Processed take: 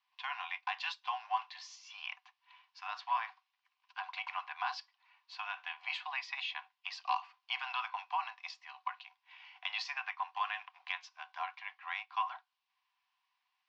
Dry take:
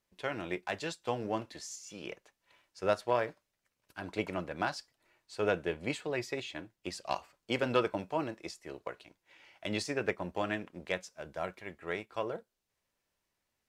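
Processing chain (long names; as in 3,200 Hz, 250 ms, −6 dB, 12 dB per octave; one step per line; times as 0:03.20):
Butterworth low-pass 5,400 Hz 36 dB per octave
parametric band 1,200 Hz +8 dB 0.85 octaves
notch filter 1,300 Hz, Q 8.8
brickwall limiter −22 dBFS, peak gain reduction 10 dB
Chebyshev high-pass with heavy ripple 730 Hz, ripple 9 dB
level +5.5 dB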